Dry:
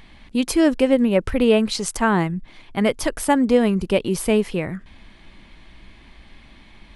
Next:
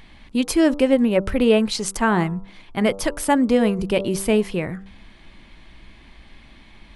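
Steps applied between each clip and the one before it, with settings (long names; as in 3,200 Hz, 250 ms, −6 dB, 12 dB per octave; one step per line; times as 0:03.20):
hum removal 97.4 Hz, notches 14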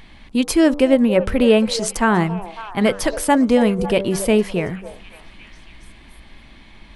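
echo through a band-pass that steps 276 ms, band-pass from 630 Hz, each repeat 0.7 octaves, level −10 dB
level +2.5 dB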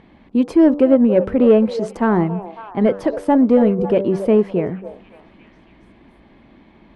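resonant band-pass 350 Hz, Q 0.74
in parallel at −4 dB: soft clipping −13.5 dBFS, distortion −13 dB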